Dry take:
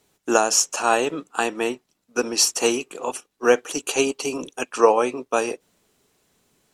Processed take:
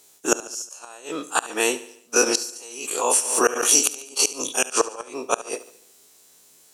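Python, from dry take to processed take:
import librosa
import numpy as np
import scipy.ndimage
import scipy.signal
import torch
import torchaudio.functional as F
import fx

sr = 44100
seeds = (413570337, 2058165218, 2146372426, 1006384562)

y = fx.spec_dilate(x, sr, span_ms=60)
y = fx.bass_treble(y, sr, bass_db=-11, treble_db=12)
y = fx.gate_flip(y, sr, shuts_db=-4.0, range_db=-28)
y = fx.echo_feedback(y, sr, ms=72, feedback_pct=52, wet_db=-16.0)
y = fx.pre_swell(y, sr, db_per_s=64.0, at=(2.26, 3.87))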